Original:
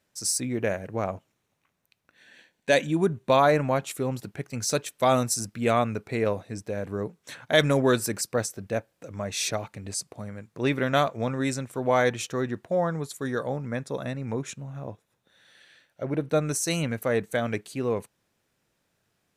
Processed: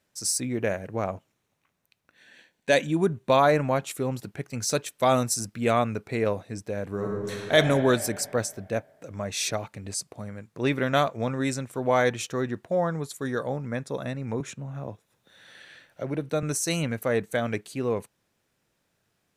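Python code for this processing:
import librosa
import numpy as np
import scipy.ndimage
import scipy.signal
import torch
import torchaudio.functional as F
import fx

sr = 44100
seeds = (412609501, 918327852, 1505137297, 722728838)

y = fx.reverb_throw(x, sr, start_s=6.89, length_s=0.65, rt60_s=2.5, drr_db=-2.5)
y = fx.band_squash(y, sr, depth_pct=40, at=(14.4, 16.43))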